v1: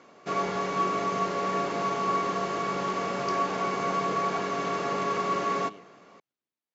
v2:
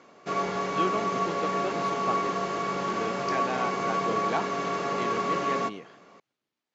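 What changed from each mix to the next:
speech +10.0 dB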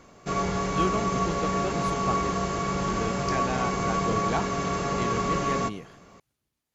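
master: remove band-pass 260–4700 Hz

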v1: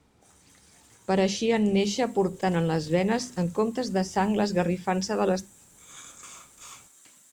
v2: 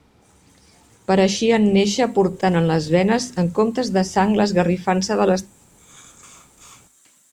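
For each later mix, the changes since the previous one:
speech +7.5 dB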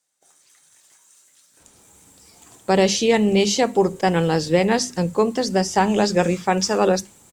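speech: entry +1.60 s; master: add tone controls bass -4 dB, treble +4 dB

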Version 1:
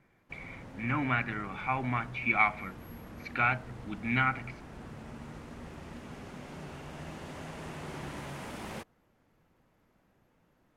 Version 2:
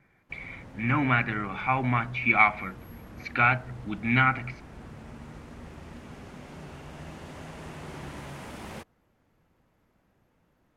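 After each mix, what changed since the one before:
speech +5.5 dB; master: add peaking EQ 64 Hz +4 dB 1.4 oct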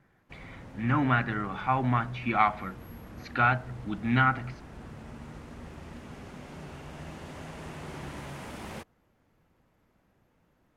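speech: add peaking EQ 2.3 kHz -14 dB 0.3 oct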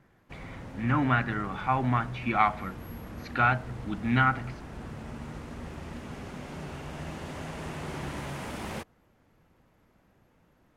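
background +4.0 dB

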